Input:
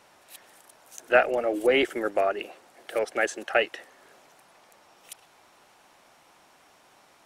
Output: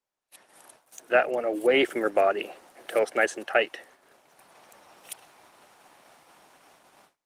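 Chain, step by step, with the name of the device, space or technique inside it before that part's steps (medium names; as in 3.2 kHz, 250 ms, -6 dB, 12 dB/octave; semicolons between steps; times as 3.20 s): video call (high-pass 100 Hz 12 dB/octave; level rider gain up to 11 dB; gate -47 dBFS, range -27 dB; trim -6 dB; Opus 32 kbps 48 kHz)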